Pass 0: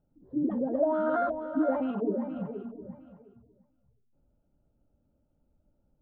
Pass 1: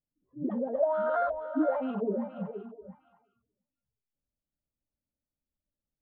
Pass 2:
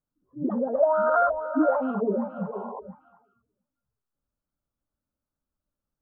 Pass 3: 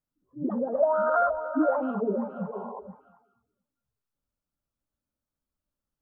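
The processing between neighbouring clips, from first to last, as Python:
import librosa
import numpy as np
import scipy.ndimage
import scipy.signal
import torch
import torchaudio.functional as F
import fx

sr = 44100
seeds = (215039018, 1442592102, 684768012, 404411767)

y1 = fx.noise_reduce_blind(x, sr, reduce_db=22)
y2 = fx.high_shelf_res(y1, sr, hz=1700.0, db=-7.5, q=3.0)
y2 = fx.spec_paint(y2, sr, seeds[0], shape='noise', start_s=2.52, length_s=0.28, low_hz=400.0, high_hz=1100.0, level_db=-42.0)
y2 = y2 * 10.0 ** (4.5 / 20.0)
y3 = y2 + 10.0 ** (-20.0 / 20.0) * np.pad(y2, (int(208 * sr / 1000.0), 0))[:len(y2)]
y3 = y3 * 10.0 ** (-2.0 / 20.0)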